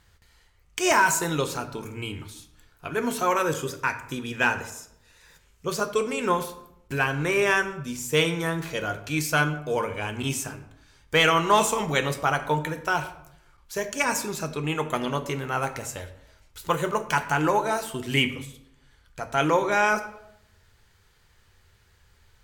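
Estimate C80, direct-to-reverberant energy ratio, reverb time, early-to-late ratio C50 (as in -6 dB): 14.5 dB, 7.0 dB, 0.75 s, 12.0 dB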